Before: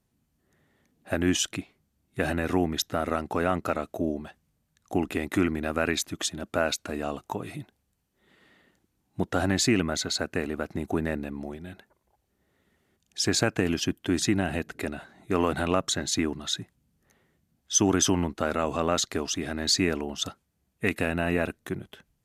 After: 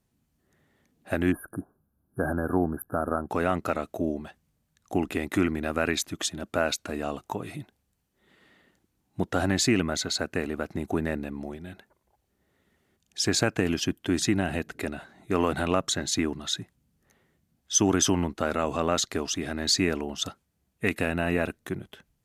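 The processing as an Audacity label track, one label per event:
1.320000	3.290000	spectral delete 1700–9500 Hz

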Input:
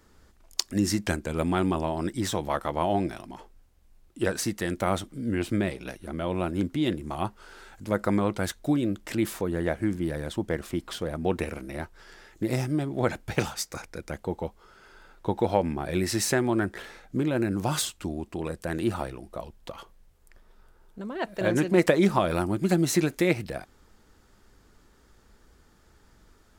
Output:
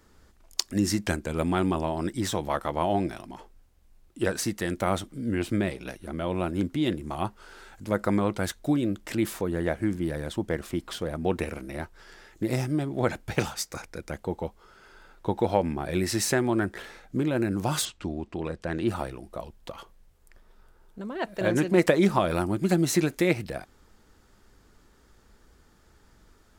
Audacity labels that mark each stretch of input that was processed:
17.850000	18.880000	LPF 5000 Hz

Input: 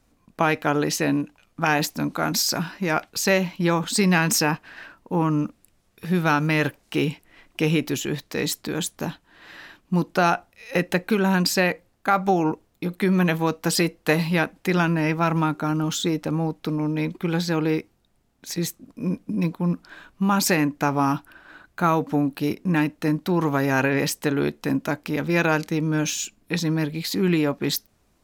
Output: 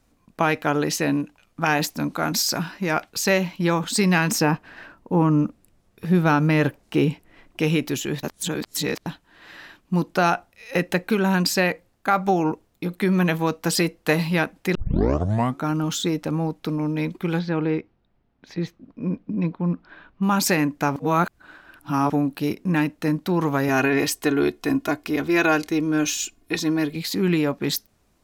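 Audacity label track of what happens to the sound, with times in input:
4.310000	7.600000	tilt shelf lows +4 dB, about 1200 Hz
8.230000	9.060000	reverse
14.750000	14.750000	tape start 0.88 s
17.390000	20.230000	air absorption 290 m
20.960000	22.100000	reverse
23.680000	26.960000	comb 2.8 ms, depth 68%

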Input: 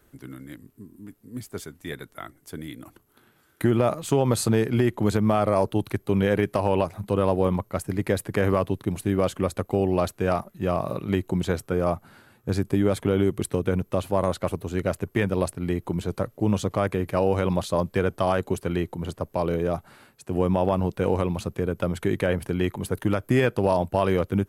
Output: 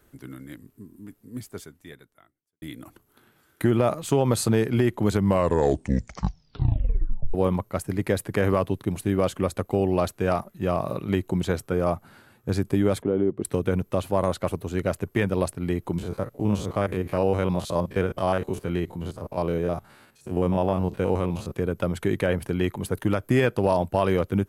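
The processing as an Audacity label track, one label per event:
1.360000	2.620000	fade out quadratic
5.080000	5.080000	tape stop 2.26 s
13.020000	13.450000	band-pass 360 Hz, Q 0.79
15.980000	21.520000	stepped spectrum every 50 ms

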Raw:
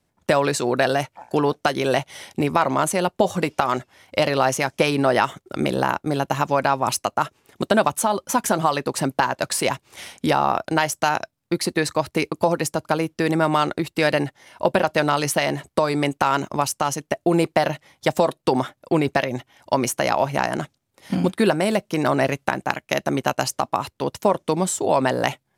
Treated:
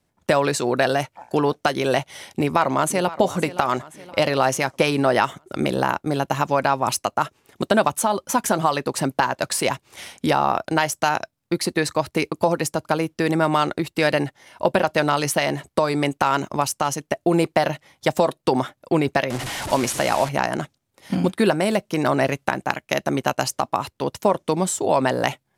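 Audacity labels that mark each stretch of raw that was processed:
2.260000	3.190000	echo throw 0.52 s, feedback 50%, level -15.5 dB
19.300000	20.290000	delta modulation 64 kbps, step -23 dBFS

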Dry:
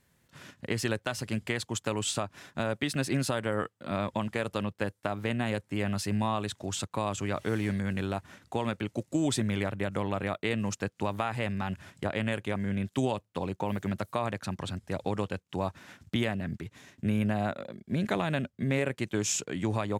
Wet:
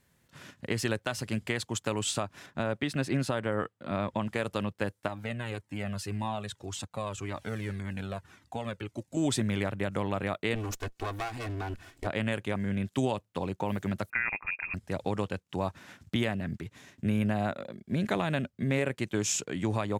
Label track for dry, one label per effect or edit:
2.460000	4.270000	high shelf 4700 Hz -9 dB
5.080000	9.170000	cascading flanger falling 1.8 Hz
10.550000	12.070000	minimum comb delay 2.7 ms
14.100000	14.740000	inverted band carrier 2600 Hz

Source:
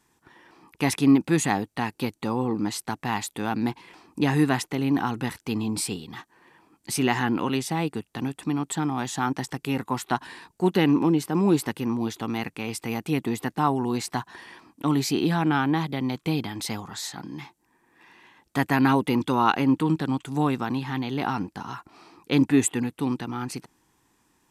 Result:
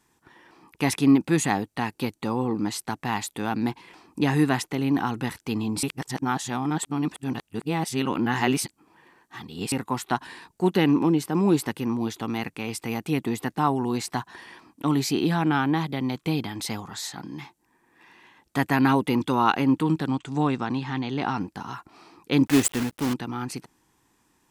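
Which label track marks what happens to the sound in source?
5.830000	9.720000	reverse
20.090000	21.400000	LPF 8100 Hz 24 dB/oct
22.460000	23.140000	block floating point 3-bit

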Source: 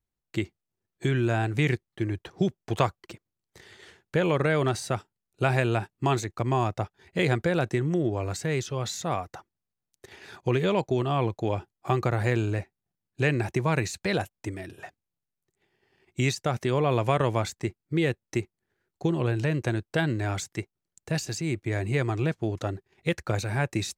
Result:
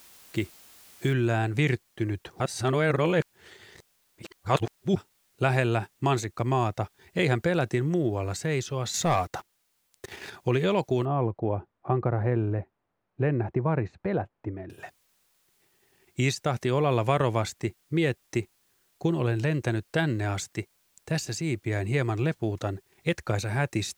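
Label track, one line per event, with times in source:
1.130000	1.130000	noise floor step -53 dB -69 dB
2.400000	4.960000	reverse
8.940000	10.300000	sample leveller passes 2
11.050000	14.700000	LPF 1100 Hz

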